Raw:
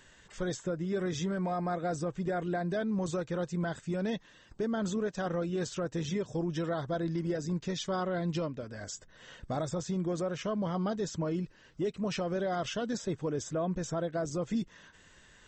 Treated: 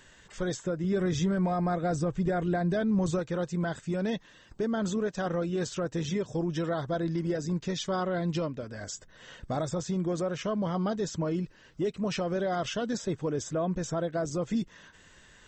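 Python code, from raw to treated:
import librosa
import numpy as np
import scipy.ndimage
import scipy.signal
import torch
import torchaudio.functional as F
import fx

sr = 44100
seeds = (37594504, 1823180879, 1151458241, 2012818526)

y = fx.low_shelf(x, sr, hz=130.0, db=11.0, at=(0.84, 3.19))
y = y * librosa.db_to_amplitude(2.5)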